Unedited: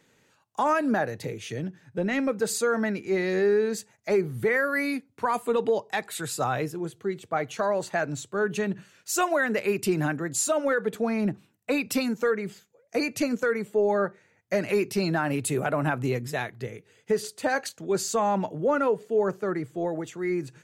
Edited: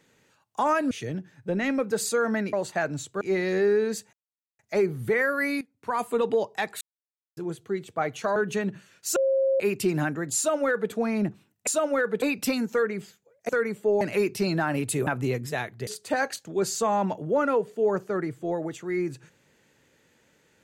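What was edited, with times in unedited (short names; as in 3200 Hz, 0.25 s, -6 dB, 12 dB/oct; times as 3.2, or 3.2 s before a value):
0.91–1.4 cut
3.94 insert silence 0.46 s
4.96–5.39 fade in, from -17 dB
6.16–6.72 mute
7.71–8.39 move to 3.02
9.19–9.63 bleep 537 Hz -19.5 dBFS
10.4–10.95 copy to 11.7
12.97–13.39 cut
13.91–14.57 cut
15.63–15.88 cut
16.68–17.2 cut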